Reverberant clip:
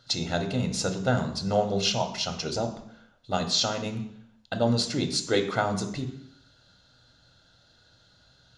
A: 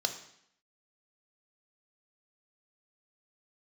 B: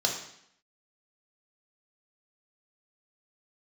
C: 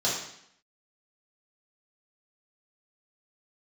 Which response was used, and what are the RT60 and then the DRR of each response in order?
A; 0.70, 0.70, 0.70 seconds; 5.5, 0.0, −7.5 decibels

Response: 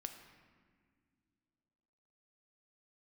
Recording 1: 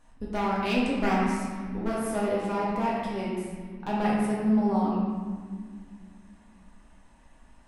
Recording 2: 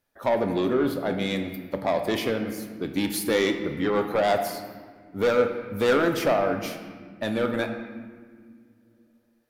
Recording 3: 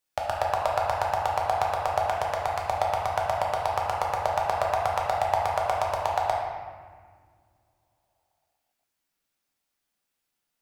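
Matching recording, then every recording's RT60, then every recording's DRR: 2; 1.9 s, non-exponential decay, 1.9 s; −6.5, 5.5, −2.0 decibels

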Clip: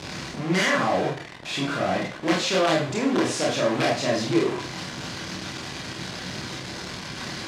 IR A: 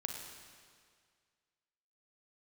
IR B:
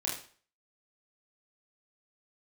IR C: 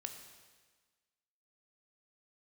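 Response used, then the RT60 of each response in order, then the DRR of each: B; 2.0, 0.45, 1.4 seconds; 2.5, −4.0, 5.0 decibels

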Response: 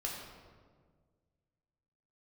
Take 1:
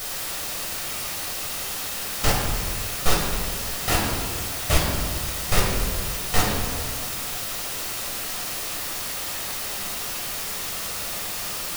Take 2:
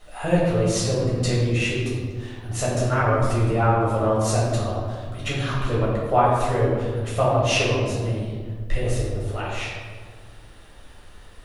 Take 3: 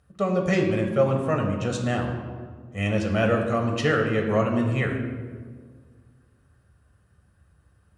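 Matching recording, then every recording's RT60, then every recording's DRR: 1; 1.7, 1.7, 1.7 seconds; −3.0, −8.0, 2.0 decibels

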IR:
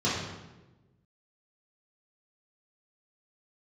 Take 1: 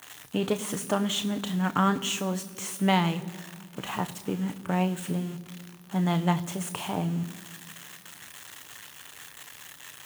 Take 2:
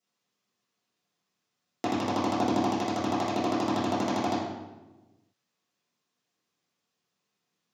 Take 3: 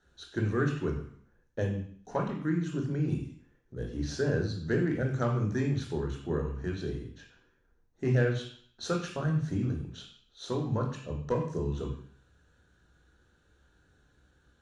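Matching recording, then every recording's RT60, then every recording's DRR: 2; 2.0, 1.1, 0.55 seconds; 9.5, −9.5, 1.5 decibels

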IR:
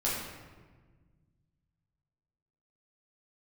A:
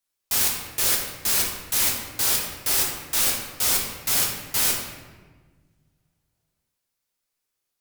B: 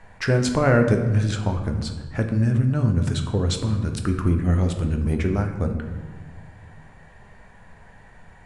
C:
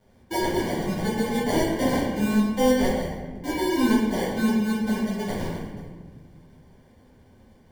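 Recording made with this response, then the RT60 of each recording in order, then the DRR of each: C; 1.4, 1.5, 1.4 seconds; −3.0, 4.0, −9.0 decibels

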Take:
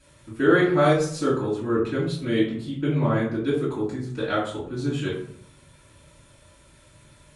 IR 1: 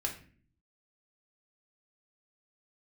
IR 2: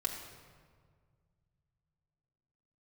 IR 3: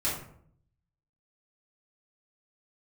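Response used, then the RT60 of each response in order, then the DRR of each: 3; 0.45, 1.8, 0.60 seconds; 0.5, −2.5, −8.5 decibels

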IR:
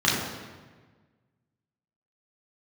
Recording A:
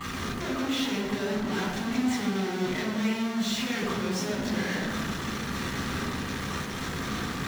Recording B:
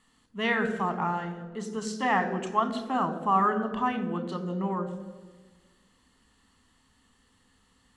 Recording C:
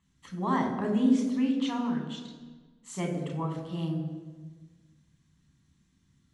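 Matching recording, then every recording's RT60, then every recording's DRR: A; 1.4, 1.4, 1.4 seconds; −7.0, 8.0, 1.0 decibels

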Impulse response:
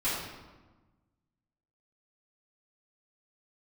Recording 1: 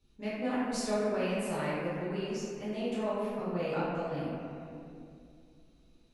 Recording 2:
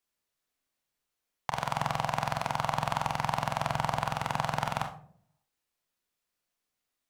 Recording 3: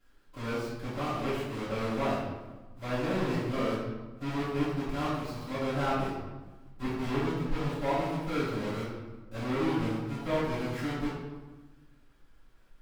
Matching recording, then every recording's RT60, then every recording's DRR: 3; 2.4, 0.60, 1.2 seconds; −12.5, 4.0, −14.0 decibels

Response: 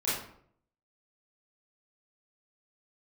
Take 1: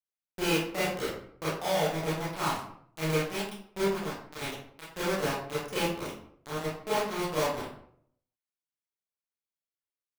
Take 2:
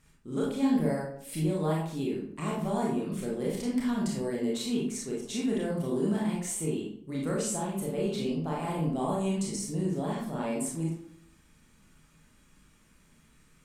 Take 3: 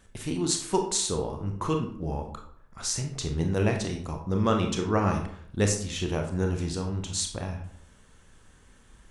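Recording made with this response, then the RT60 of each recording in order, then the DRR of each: 1; 0.65, 0.65, 0.65 seconds; −11.0, −4.5, 3.0 decibels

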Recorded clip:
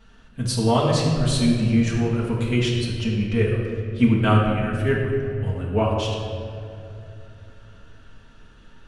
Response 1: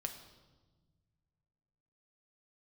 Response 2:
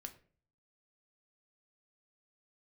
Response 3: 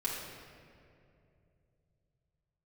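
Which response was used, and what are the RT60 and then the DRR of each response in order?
3; 1.3, 0.45, 2.6 seconds; 4.5, 6.0, −6.0 decibels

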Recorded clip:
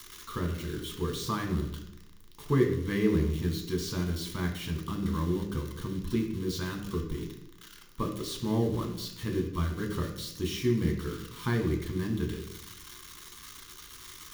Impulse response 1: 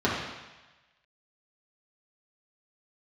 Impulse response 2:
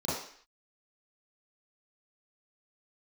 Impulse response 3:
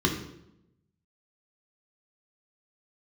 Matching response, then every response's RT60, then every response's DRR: 3; 1.1, 0.55, 0.85 seconds; −7.0, −11.0, 0.0 decibels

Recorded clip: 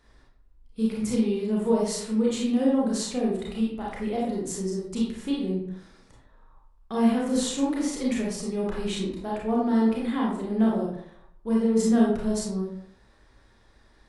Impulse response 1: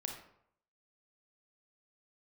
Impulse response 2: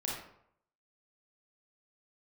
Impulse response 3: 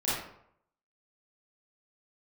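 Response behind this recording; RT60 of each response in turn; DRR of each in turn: 2; 0.70, 0.70, 0.70 seconds; 2.0, −4.5, −11.0 decibels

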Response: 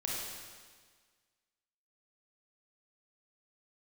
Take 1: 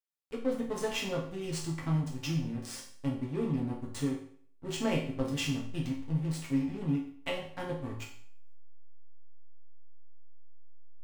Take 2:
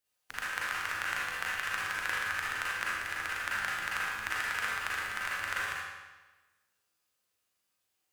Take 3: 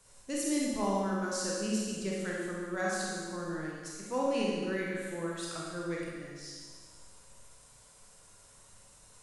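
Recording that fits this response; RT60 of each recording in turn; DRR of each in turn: 3; 0.55, 1.2, 1.6 seconds; −3.5, −7.0, −4.5 decibels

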